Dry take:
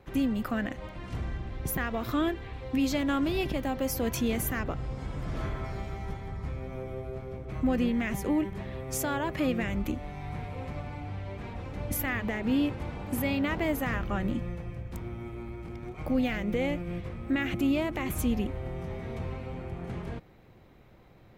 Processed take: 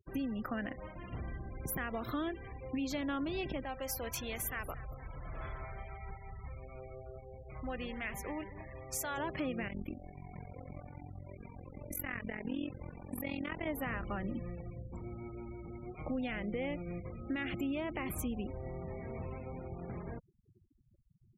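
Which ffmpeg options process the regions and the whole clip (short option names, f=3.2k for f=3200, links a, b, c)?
-filter_complex "[0:a]asettb=1/sr,asplit=3[a][b][c];[a]atrim=end=3.644[d];[b]atrim=start=3.64:end=9.18,asetpts=PTS-STARTPTS,afade=t=in:d=0.004:c=qsin,afade=t=out:st=5.536:d=0.004:c=qsin,equalizer=f=240:w=0.71:g=-12,aecho=1:1:226|452|678|904:0.178|0.0747|0.0314|0.0132,atrim=end_sample=244314[e];[c]atrim=start=9.176[f];[d][e]acrossfade=d=0.004:c1=hsin:c2=qsin[g];[g][f]acrossfade=d=0.004:c1=qsin:c2=hsin,asettb=1/sr,asplit=3[h][i][j];[h]atrim=end=9.684[k];[i]atrim=start=9.68:end=13.67,asetpts=PTS-STARTPTS,afade=t=in:d=0.004:c=qsin,afade=t=out:st=3.986:d=0.004:c=qsin,bandreject=f=900:w=28,tremolo=f=44:d=0.919,equalizer=f=690:t=o:w=1.2:g=-2.5[l];[j]atrim=start=13.666[m];[k][l]acrossfade=d=0.004:c1=hsin:c2=qsin[n];[n][m]acrossfade=d=0.004:c1=qsin:c2=hsin,acompressor=threshold=-29dB:ratio=3,lowshelf=f=220:g=-4,afftfilt=real='re*gte(hypot(re,im),0.00794)':imag='im*gte(hypot(re,im),0.00794)':win_size=1024:overlap=0.75,volume=-3.5dB"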